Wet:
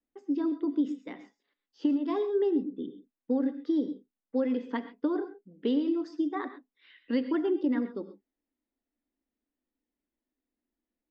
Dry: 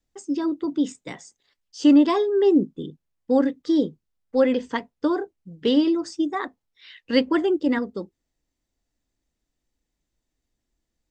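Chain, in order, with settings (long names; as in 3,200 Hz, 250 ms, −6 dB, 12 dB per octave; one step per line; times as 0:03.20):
low-pass that shuts in the quiet parts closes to 3,000 Hz, open at −14 dBFS
low shelf with overshoot 180 Hz −10.5 dB, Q 3
downward compressor 10 to 1, threshold −16 dBFS, peak gain reduction 11.5 dB
high-frequency loss of the air 150 metres
reverb whose tail is shaped and stops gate 150 ms rising, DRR 11 dB
level −7.5 dB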